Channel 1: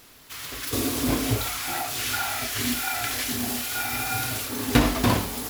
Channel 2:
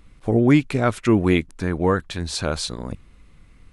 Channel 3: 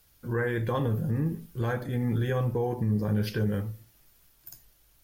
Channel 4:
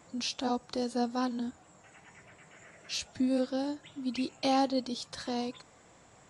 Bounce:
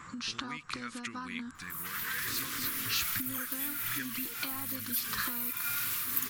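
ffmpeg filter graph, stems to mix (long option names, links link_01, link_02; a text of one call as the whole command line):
ffmpeg -i stem1.wav -i stem2.wav -i stem3.wav -i stem4.wav -filter_complex "[0:a]highpass=frequency=620:poles=1,adelay=1550,volume=-13dB[link_01];[1:a]agate=range=-33dB:threshold=-38dB:ratio=3:detection=peak,equalizer=frequency=180:width_type=o:width=1.1:gain=9,volume=-17dB[link_02];[2:a]aphaser=in_gain=1:out_gain=1:delay=4.7:decay=0.73:speed=1.3:type=sinusoidal,aexciter=amount=10:drive=4.1:freq=6700,adelay=1700,volume=-7.5dB[link_03];[3:a]acompressor=threshold=-31dB:ratio=6,equalizer=frequency=1100:width_type=o:width=1.1:gain=15,volume=-0.5dB[link_04];[link_01][link_04]amix=inputs=2:normalize=0,tiltshelf=frequency=1100:gain=9,acompressor=threshold=-37dB:ratio=5,volume=0dB[link_05];[link_02][link_03]amix=inputs=2:normalize=0,equalizer=frequency=110:width=0.39:gain=-14.5,acompressor=threshold=-44dB:ratio=6,volume=0dB[link_06];[link_05][link_06]amix=inputs=2:normalize=0,firequalizer=gain_entry='entry(140,0);entry(680,-18);entry(1200,7);entry(1800,13)':delay=0.05:min_phase=1" out.wav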